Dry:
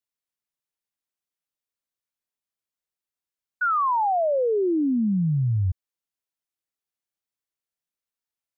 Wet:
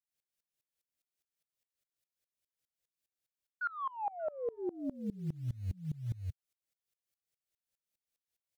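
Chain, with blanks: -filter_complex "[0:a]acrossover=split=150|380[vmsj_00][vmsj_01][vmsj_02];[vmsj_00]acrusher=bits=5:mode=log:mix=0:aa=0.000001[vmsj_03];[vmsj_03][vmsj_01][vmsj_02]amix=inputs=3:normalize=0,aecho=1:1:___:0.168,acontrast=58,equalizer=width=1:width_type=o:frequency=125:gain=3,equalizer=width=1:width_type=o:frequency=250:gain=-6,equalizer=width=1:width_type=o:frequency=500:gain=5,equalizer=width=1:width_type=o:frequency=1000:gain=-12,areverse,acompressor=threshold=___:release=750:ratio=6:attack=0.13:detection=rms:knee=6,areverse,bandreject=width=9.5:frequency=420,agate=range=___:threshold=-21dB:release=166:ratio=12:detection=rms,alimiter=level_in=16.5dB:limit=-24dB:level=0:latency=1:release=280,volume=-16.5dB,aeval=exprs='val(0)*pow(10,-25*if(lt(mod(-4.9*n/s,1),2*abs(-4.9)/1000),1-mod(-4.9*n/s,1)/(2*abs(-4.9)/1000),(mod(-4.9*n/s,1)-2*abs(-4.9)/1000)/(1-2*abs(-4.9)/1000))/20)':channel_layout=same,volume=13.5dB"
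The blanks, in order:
581, -24dB, -12dB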